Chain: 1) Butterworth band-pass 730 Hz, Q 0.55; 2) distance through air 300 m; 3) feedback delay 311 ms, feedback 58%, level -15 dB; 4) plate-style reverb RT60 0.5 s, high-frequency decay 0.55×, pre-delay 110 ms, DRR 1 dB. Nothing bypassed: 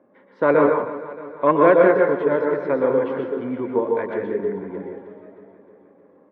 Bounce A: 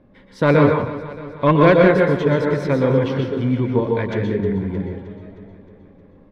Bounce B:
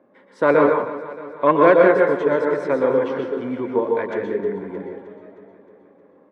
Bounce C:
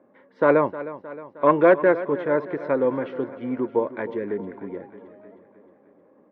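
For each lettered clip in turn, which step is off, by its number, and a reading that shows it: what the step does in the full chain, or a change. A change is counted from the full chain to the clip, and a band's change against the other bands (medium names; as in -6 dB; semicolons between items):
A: 1, 125 Hz band +15.0 dB; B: 2, 2 kHz band +1.5 dB; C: 4, loudness change -3.0 LU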